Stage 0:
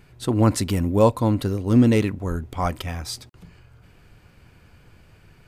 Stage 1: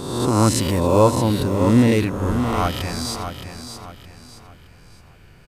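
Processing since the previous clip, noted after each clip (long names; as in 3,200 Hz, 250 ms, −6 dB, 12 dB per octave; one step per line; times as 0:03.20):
peak hold with a rise ahead of every peak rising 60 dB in 1.16 s
on a send: repeating echo 618 ms, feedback 35%, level −8.5 dB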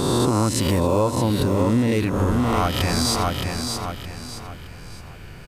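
downward compressor 8 to 1, threshold −25 dBFS, peak gain reduction 15.5 dB
level +8.5 dB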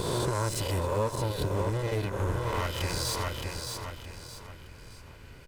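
lower of the sound and its delayed copy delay 2 ms
level −8 dB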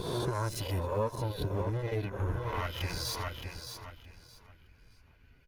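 spectral dynamics exaggerated over time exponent 1.5
parametric band 7,900 Hz −12.5 dB 0.24 octaves
level −1 dB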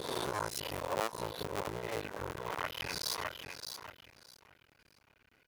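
sub-harmonics by changed cycles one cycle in 2, muted
high-pass filter 470 Hz 6 dB per octave
level +3 dB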